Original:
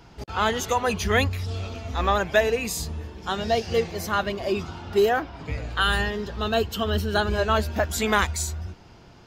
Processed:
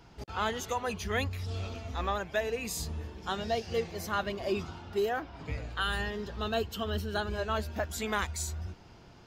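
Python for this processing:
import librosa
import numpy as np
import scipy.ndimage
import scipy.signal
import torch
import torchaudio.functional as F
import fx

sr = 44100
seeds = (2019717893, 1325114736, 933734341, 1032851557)

y = fx.rider(x, sr, range_db=4, speed_s=0.5)
y = F.gain(torch.from_numpy(y), -8.5).numpy()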